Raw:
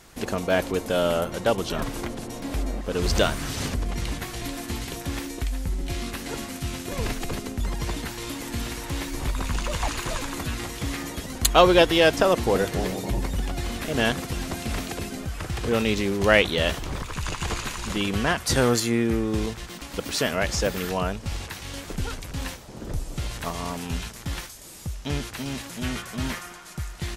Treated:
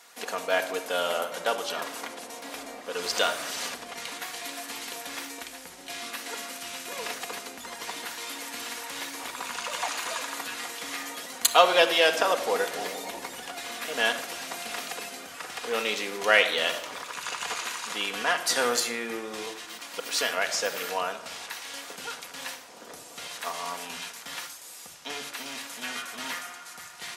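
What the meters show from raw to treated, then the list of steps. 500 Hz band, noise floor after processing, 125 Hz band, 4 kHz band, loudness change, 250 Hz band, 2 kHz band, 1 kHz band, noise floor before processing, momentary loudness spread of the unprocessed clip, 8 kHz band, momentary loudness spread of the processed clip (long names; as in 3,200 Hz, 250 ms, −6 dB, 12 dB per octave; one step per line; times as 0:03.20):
−5.0 dB, −45 dBFS, below −25 dB, 0.0 dB, −3.0 dB, −14.5 dB, 0.0 dB, −0.5 dB, −41 dBFS, 13 LU, 0.0 dB, 14 LU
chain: high-pass filter 660 Hz 12 dB per octave
rectangular room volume 3,400 cubic metres, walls furnished, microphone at 1.8 metres
level −1 dB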